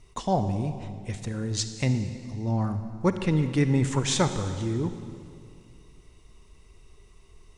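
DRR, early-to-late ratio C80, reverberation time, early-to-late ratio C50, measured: 9.0 dB, 10.0 dB, 2.3 s, 9.0 dB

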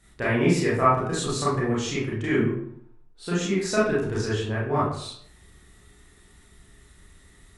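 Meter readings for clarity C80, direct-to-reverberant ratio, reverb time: 6.0 dB, -9.0 dB, 0.65 s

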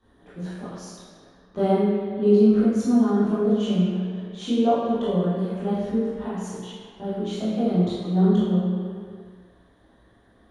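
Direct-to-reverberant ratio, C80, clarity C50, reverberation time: -12.5 dB, 0.0 dB, -2.0 dB, not exponential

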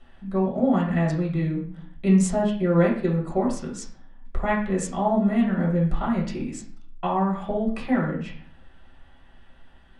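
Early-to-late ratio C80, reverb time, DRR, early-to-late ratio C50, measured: 10.5 dB, 0.50 s, -4.0 dB, 6.0 dB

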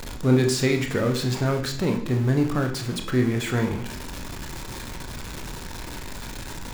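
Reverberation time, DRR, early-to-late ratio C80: 0.65 s, 3.0 dB, 11.5 dB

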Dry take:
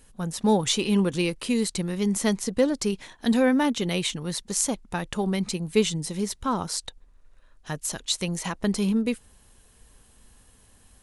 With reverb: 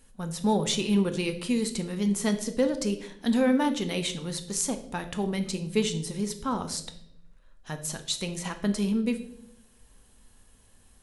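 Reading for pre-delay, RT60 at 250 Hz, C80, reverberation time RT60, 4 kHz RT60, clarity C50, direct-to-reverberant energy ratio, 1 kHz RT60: 4 ms, 1.1 s, 15.5 dB, 0.80 s, 0.60 s, 11.5 dB, 7.0 dB, 0.65 s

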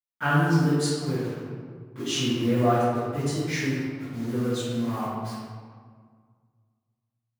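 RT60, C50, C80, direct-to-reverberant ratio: 1.8 s, -4.0 dB, -1.0 dB, -17.0 dB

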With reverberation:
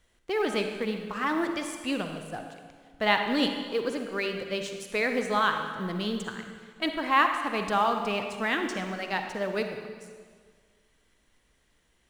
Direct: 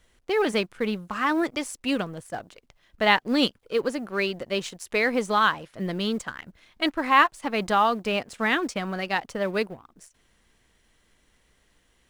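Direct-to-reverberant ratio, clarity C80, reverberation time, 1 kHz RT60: 5.0 dB, 7.0 dB, 1.7 s, 1.7 s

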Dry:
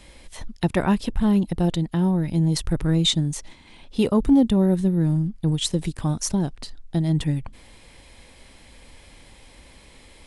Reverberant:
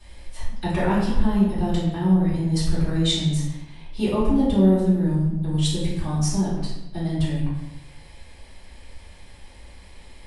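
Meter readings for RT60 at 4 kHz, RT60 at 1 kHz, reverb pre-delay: 0.70 s, 0.90 s, 3 ms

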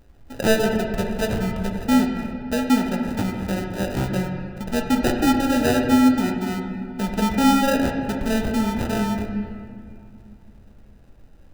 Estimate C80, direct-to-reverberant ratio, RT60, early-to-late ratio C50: 5.0 dB, 2.0 dB, 2.3 s, 4.0 dB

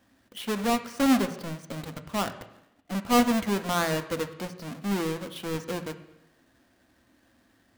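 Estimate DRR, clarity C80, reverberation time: 7.5 dB, 14.0 dB, 0.85 s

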